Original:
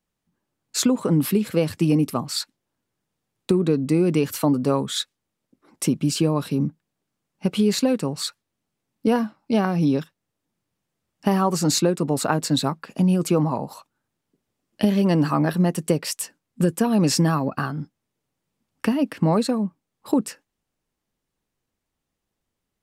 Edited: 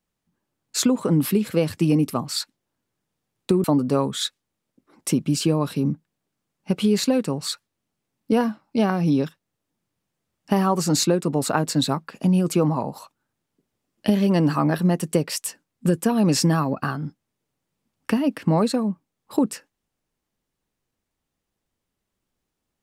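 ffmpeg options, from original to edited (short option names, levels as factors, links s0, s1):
-filter_complex "[0:a]asplit=2[s0][s1];[s0]atrim=end=3.642[s2];[s1]atrim=start=4.388[s3];[s2][s3]acrossfade=d=0.004:c1=hsin:c2=hsin"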